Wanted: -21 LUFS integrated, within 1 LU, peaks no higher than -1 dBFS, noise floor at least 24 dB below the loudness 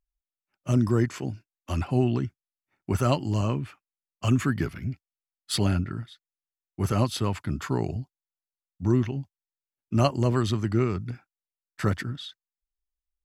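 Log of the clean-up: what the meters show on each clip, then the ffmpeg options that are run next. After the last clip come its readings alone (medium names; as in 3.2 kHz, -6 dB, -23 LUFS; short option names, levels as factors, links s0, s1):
loudness -27.5 LUFS; peak level -9.0 dBFS; loudness target -21.0 LUFS
-> -af "volume=2.11"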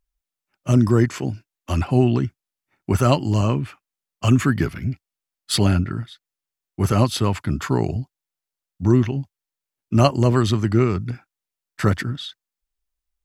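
loudness -21.0 LUFS; peak level -2.5 dBFS; noise floor -88 dBFS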